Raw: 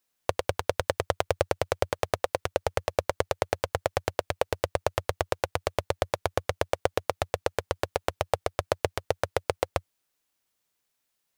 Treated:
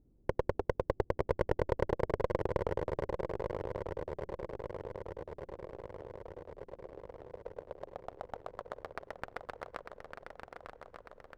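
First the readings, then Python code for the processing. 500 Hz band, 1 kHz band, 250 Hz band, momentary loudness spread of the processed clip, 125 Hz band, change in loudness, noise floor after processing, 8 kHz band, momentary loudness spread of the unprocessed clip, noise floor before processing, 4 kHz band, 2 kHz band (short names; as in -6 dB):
-8.0 dB, -11.0 dB, -2.5 dB, 16 LU, -6.5 dB, -8.5 dB, -65 dBFS, under -25 dB, 3 LU, -79 dBFS, -21.5 dB, -12.5 dB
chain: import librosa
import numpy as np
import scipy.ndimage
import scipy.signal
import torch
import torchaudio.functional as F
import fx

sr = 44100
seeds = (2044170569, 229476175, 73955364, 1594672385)

p1 = fx.over_compress(x, sr, threshold_db=-30.0, ratio=-1.0)
p2 = x + F.gain(torch.from_numpy(p1), -2.5).numpy()
p3 = fx.filter_sweep_bandpass(p2, sr, from_hz=630.0, to_hz=7400.0, start_s=2.36, end_s=4.2, q=1.1)
p4 = fx.dmg_noise_colour(p3, sr, seeds[0], colour='brown', level_db=-65.0)
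p5 = fx.filter_sweep_lowpass(p4, sr, from_hz=350.0, to_hz=1500.0, start_s=7.0, end_s=9.1, q=2.1)
p6 = fx.clip_asym(p5, sr, top_db=-34.5, bottom_db=-16.0)
p7 = p6 + fx.echo_swing(p6, sr, ms=1198, ratio=3, feedback_pct=59, wet_db=-6.5, dry=0)
y = F.gain(torch.from_numpy(p7), 1.0).numpy()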